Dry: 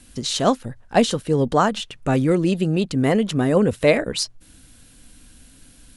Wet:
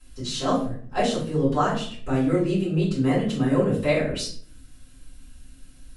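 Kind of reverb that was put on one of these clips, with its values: simulated room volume 54 m³, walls mixed, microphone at 3.4 m; trim -19.5 dB

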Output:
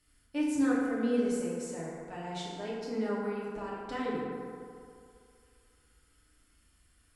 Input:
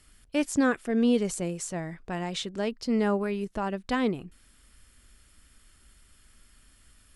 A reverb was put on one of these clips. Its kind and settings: FDN reverb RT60 2.4 s, low-frequency decay 0.8×, high-frequency decay 0.4×, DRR -7.5 dB; trim -14.5 dB

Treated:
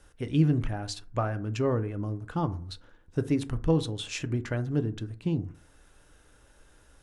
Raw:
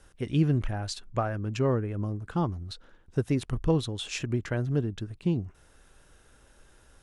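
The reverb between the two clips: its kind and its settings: FDN reverb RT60 0.46 s, low-frequency decay 1.05×, high-frequency decay 0.4×, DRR 10 dB; trim -1 dB

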